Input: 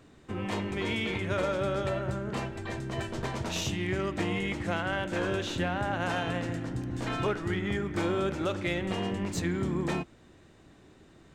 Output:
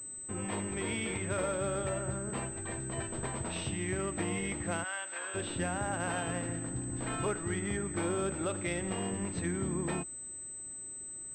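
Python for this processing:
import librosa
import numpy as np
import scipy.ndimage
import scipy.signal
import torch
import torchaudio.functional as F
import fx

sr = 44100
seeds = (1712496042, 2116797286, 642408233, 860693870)

y = fx.highpass(x, sr, hz=1000.0, slope=12, at=(4.83, 5.34), fade=0.02)
y = fx.pwm(y, sr, carrier_hz=8100.0)
y = F.gain(torch.from_numpy(y), -4.0).numpy()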